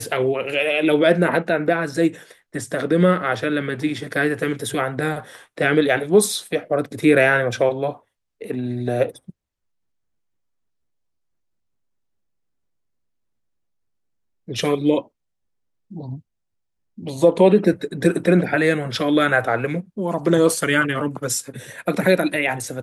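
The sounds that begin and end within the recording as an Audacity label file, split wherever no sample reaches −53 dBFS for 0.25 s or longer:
8.410000	9.310000	sound
14.480000	15.080000	sound
15.900000	16.210000	sound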